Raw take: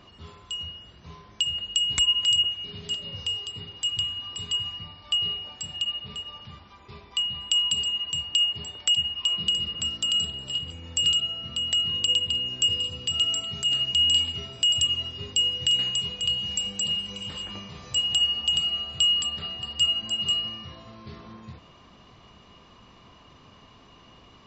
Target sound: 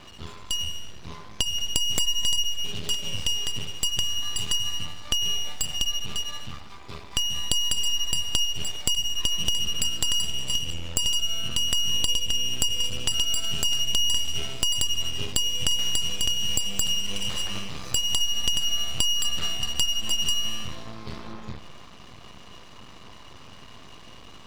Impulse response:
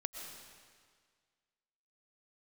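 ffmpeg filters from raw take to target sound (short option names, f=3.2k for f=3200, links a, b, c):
-filter_complex "[0:a]highshelf=f=5.3k:g=7,acompressor=threshold=-27dB:ratio=6,aeval=exprs='max(val(0),0)':c=same,asplit=2[a][b];[1:a]atrim=start_sample=2205,afade=t=out:st=0.39:d=0.01,atrim=end_sample=17640,asetrate=52920,aresample=44100[c];[b][c]afir=irnorm=-1:irlink=0,volume=-8dB[d];[a][d]amix=inputs=2:normalize=0,volume=6.5dB"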